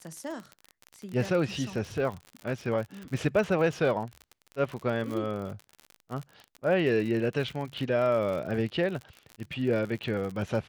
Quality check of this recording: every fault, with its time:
crackle 56/s -34 dBFS

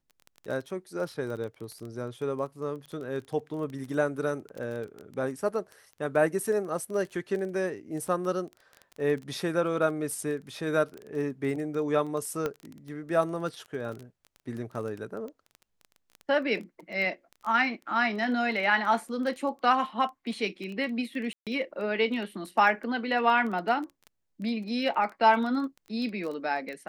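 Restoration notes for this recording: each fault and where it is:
crackle 16/s -34 dBFS
12.46 pop -17 dBFS
21.33–21.47 gap 0.137 s

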